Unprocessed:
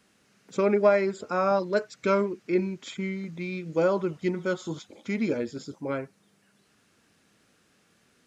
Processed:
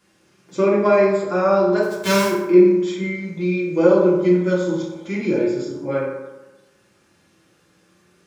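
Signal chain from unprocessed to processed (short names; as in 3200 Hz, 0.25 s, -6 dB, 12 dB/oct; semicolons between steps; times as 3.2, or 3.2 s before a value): 1.82–2.28 spectral whitening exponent 0.3; reverb RT60 1.1 s, pre-delay 3 ms, DRR -6.5 dB; gain -1 dB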